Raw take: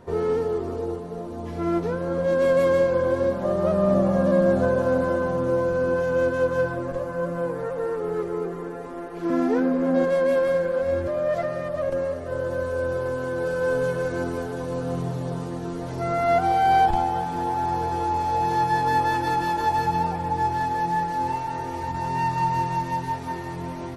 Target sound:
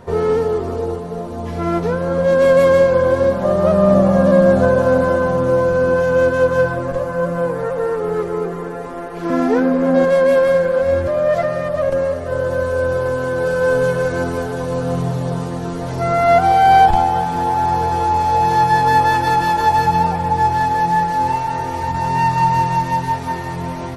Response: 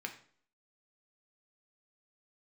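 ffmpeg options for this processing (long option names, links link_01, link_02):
-af "equalizer=frequency=320:width=3.2:gain=-7,volume=8.5dB"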